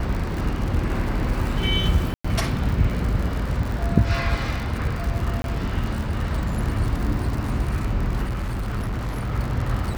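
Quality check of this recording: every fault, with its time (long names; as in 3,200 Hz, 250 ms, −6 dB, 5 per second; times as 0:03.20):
surface crackle 93 per second −27 dBFS
0:02.14–0:02.25: drop-out 105 ms
0:05.42–0:05.44: drop-out 22 ms
0:08.23–0:09.32: clipping −22.5 dBFS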